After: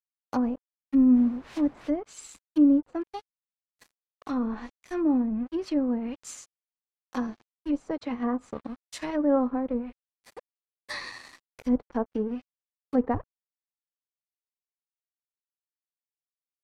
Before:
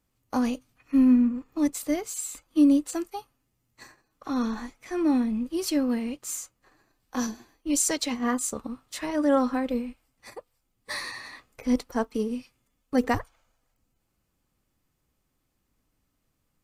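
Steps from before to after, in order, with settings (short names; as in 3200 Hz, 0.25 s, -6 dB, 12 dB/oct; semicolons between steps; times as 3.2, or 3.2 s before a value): 1.15–1.87 added noise white -37 dBFS; crossover distortion -44.5 dBFS; treble ducked by the level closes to 910 Hz, closed at -23.5 dBFS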